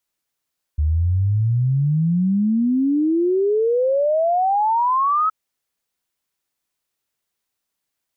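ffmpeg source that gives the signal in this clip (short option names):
-f lavfi -i "aevalsrc='0.178*clip(min(t,4.52-t)/0.01,0,1)*sin(2*PI*73*4.52/log(1300/73)*(exp(log(1300/73)*t/4.52)-1))':d=4.52:s=44100"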